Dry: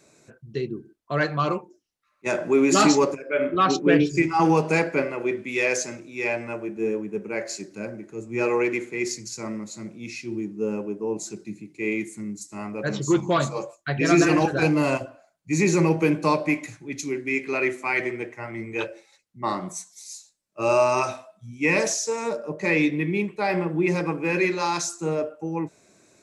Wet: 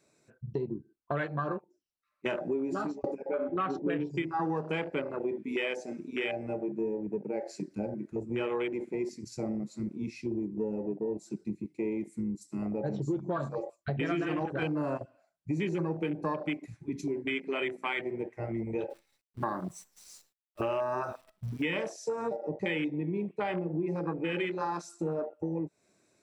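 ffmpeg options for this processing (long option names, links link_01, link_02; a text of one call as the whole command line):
ffmpeg -i in.wav -filter_complex "[0:a]asettb=1/sr,asplit=3[link_01][link_02][link_03];[link_01]atrim=end=18.904[link_04];[link_02]atrim=start=18.9:end=21.81,asetpts=PTS-STARTPTS,afade=type=in:duration=0.004:curve=qsin,afade=type=out:start_time=2.906:duration=0.004:curve=qsin,acrusher=bits=8:dc=4:mix=0:aa=0.000001[link_05];[link_03]atrim=start=21.806[link_06];[link_04][link_05]acrossfade=duration=0.004:curve1=hsin:curve2=qsin[link_07];[link_07][link_06]acrossfade=duration=0.004:curve1=qsin:curve2=hsin,asplit=2[link_08][link_09];[link_08]atrim=end=3.04,asetpts=PTS-STARTPTS,afade=type=out:start_time=2.48:duration=0.56[link_10];[link_09]atrim=start=3.04,asetpts=PTS-STARTPTS,afade=type=in:duration=0.004:curve=hsin[link_11];[link_10][link_11]concat=n=2:v=0:a=1,afwtdn=0.0447,bandreject=frequency=6600:width=9.4,acompressor=threshold=-36dB:ratio=5,volume=5dB" out.wav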